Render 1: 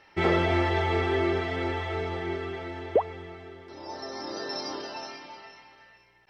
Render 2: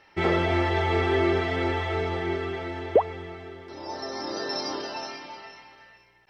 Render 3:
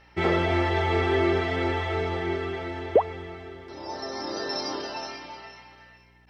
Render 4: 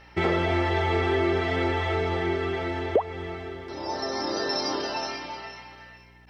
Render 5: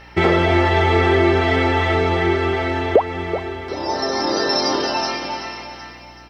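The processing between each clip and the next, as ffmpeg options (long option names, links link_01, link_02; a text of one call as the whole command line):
ffmpeg -i in.wav -af "dynaudnorm=framelen=370:gausssize=5:maxgain=3.5dB" out.wav
ffmpeg -i in.wav -af "aeval=exprs='val(0)+0.00126*(sin(2*PI*60*n/s)+sin(2*PI*2*60*n/s)/2+sin(2*PI*3*60*n/s)/3+sin(2*PI*4*60*n/s)/4+sin(2*PI*5*60*n/s)/5)':channel_layout=same" out.wav
ffmpeg -i in.wav -af "acompressor=threshold=-29dB:ratio=2,volume=4.5dB" out.wav
ffmpeg -i in.wav -af "aecho=1:1:380|760|1140|1520|1900:0.251|0.116|0.0532|0.0244|0.0112,volume=8.5dB" out.wav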